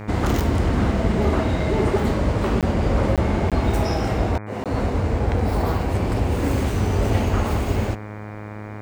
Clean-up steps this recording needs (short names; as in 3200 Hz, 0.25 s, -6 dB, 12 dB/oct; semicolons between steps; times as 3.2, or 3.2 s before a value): de-hum 105.3 Hz, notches 23; interpolate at 2.61/3.16/3.5/4.64, 17 ms